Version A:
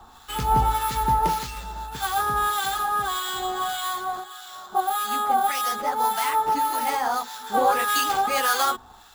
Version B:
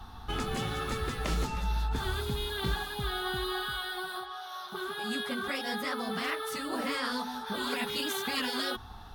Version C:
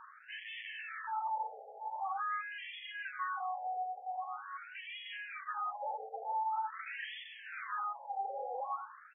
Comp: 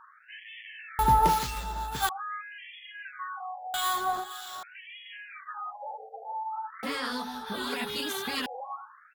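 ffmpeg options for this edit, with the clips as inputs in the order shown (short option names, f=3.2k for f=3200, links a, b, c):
-filter_complex "[0:a]asplit=2[a][b];[2:a]asplit=4[c][d][e][f];[c]atrim=end=0.992[g];[a]atrim=start=0.988:end=2.092[h];[d]atrim=start=2.088:end=3.742[i];[b]atrim=start=3.738:end=4.632[j];[e]atrim=start=4.628:end=6.832[k];[1:a]atrim=start=6.828:end=8.462[l];[f]atrim=start=8.458[m];[g][h]acrossfade=d=0.004:c1=hsin:c2=hsin[n];[n][i]acrossfade=d=0.004:c1=hsin:c2=hsin[o];[o][j]acrossfade=d=0.004:c1=hsin:c2=hsin[p];[p][k]acrossfade=d=0.004:c1=hsin:c2=hsin[q];[q][l]acrossfade=d=0.004:c1=hsin:c2=hsin[r];[r][m]acrossfade=d=0.004:c1=hsin:c2=hsin"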